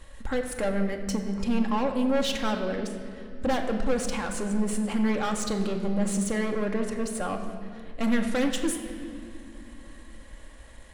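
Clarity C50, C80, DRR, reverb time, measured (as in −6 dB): 7.0 dB, 8.0 dB, 3.0 dB, 2.4 s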